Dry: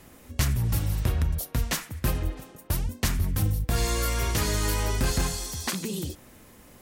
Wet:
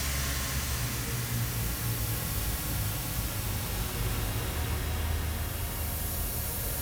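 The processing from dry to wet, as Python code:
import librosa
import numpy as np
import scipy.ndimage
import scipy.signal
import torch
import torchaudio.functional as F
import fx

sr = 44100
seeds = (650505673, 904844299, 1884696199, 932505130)

y = fx.low_shelf(x, sr, hz=340.0, db=-11.5)
y = fx.power_curve(y, sr, exponent=0.5)
y = fx.echo_split(y, sr, split_hz=500.0, low_ms=350, high_ms=138, feedback_pct=52, wet_db=-5.0)
y = fx.paulstretch(y, sr, seeds[0], factor=6.4, window_s=0.5, from_s=0.42)
y = y * librosa.db_to_amplitude(-6.5)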